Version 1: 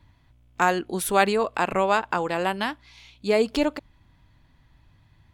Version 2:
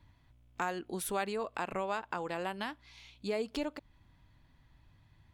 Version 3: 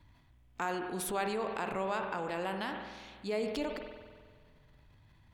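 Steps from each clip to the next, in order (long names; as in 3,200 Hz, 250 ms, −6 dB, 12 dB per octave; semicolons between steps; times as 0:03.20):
downward compressor 2 to 1, threshold −32 dBFS, peak gain reduction 10.5 dB; level −5.5 dB
spring reverb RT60 1.9 s, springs 47 ms, chirp 50 ms, DRR 7.5 dB; transient designer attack −2 dB, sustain +6 dB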